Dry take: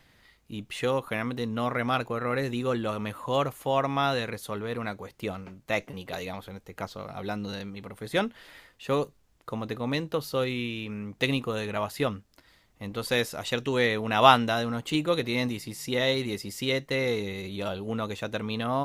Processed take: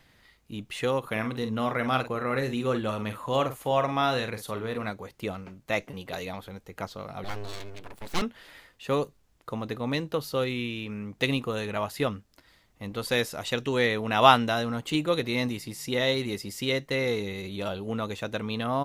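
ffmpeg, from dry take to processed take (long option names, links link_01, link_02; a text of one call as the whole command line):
ffmpeg -i in.wav -filter_complex "[0:a]asplit=3[link_01][link_02][link_03];[link_01]afade=type=out:start_time=1.03:duration=0.02[link_04];[link_02]asplit=2[link_05][link_06];[link_06]adelay=46,volume=-9dB[link_07];[link_05][link_07]amix=inputs=2:normalize=0,afade=type=in:start_time=1.03:duration=0.02,afade=type=out:start_time=4.89:duration=0.02[link_08];[link_03]afade=type=in:start_time=4.89:duration=0.02[link_09];[link_04][link_08][link_09]amix=inputs=3:normalize=0,asettb=1/sr,asplit=3[link_10][link_11][link_12];[link_10]atrim=end=7.244[link_13];[link_11]atrim=start=7.24:end=8.22,asetpts=PTS-STARTPTS,afade=type=in:duration=0.004:curve=qsin,afade=type=out:start_time=0.976:duration=0.004:curve=qsin,aeval=exprs='abs(val(0))':channel_layout=same[link_14];[link_12]atrim=start=8.216[link_15];[link_13][link_14]acrossfade=duration=0.004:curve1=hsin:curve2=qsin[link_16];[link_16][link_15]acrossfade=duration=0.004:curve1=qsin:curve2=hsin" out.wav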